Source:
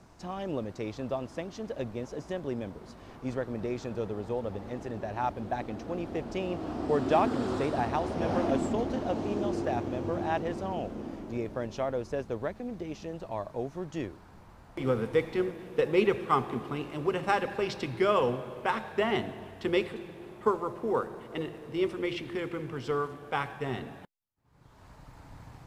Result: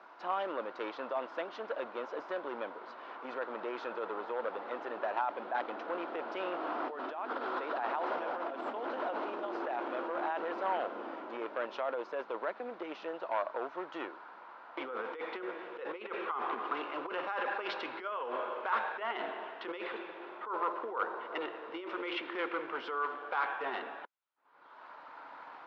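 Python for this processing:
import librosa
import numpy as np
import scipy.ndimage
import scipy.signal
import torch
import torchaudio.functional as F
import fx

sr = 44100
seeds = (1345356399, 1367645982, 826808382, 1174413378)

y = fx.over_compress(x, sr, threshold_db=-33.0, ratio=-1.0)
y = np.clip(y, -10.0 ** (-28.0 / 20.0), 10.0 ** (-28.0 / 20.0))
y = fx.cabinet(y, sr, low_hz=380.0, low_slope=24, high_hz=3600.0, hz=(410.0, 990.0, 1400.0), db=(-5, 6, 9))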